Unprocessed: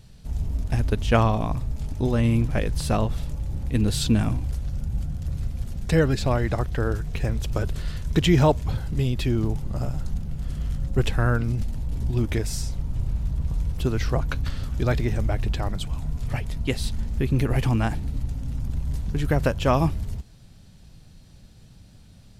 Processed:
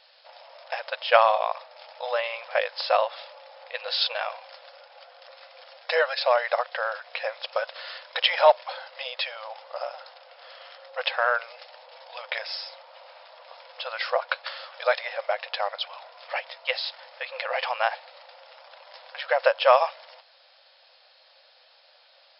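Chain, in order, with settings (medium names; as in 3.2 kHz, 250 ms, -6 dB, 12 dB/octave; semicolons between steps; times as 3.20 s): in parallel at -9 dB: hard clipper -15.5 dBFS, distortion -17 dB; on the sum: brick-wall FIR band-pass 490–5400 Hz; trim +3.5 dB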